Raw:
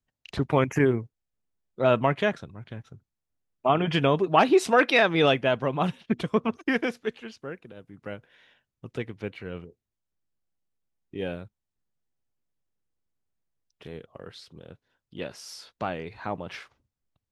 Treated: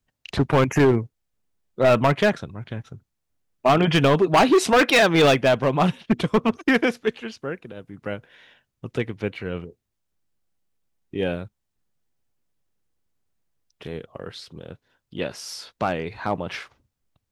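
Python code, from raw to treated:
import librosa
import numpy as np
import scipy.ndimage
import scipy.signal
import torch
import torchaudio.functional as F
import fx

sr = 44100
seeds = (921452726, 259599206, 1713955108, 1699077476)

y = np.clip(x, -10.0 ** (-19.0 / 20.0), 10.0 ** (-19.0 / 20.0))
y = F.gain(torch.from_numpy(y), 7.0).numpy()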